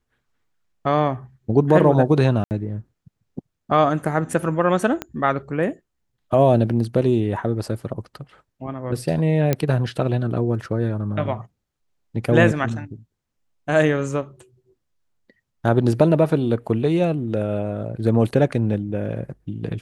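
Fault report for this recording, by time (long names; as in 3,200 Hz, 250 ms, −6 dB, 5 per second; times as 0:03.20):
0:02.44–0:02.51: drop-out 69 ms
0:05.02: click −12 dBFS
0:09.53: click −6 dBFS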